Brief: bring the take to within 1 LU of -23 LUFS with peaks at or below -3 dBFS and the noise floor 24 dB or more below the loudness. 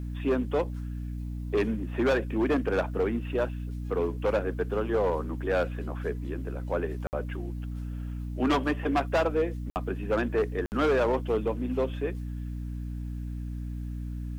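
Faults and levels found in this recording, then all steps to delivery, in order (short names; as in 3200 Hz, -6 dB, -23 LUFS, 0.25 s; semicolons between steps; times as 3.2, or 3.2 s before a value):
dropouts 3; longest dropout 59 ms; hum 60 Hz; harmonics up to 300 Hz; hum level -32 dBFS; loudness -30.0 LUFS; peak -17.5 dBFS; loudness target -23.0 LUFS
-> interpolate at 7.07/9.7/10.66, 59 ms; notches 60/120/180/240/300 Hz; gain +7 dB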